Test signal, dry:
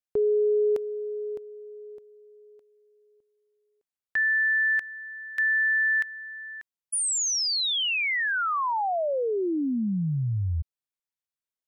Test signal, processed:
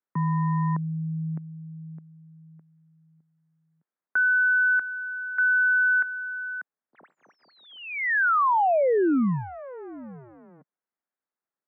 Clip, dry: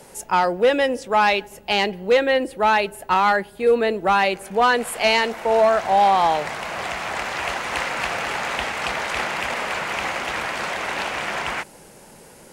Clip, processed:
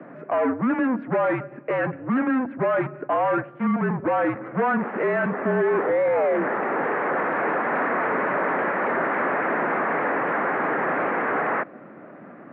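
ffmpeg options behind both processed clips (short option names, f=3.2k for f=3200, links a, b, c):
-af "volume=26dB,asoftclip=hard,volume=-26dB,highpass=f=370:t=q:w=0.5412,highpass=f=370:t=q:w=1.307,lowpass=f=2.1k:t=q:w=0.5176,lowpass=f=2.1k:t=q:w=0.7071,lowpass=f=2.1k:t=q:w=1.932,afreqshift=-260,highpass=f=160:w=0.5412,highpass=f=160:w=1.3066,volume=7dB"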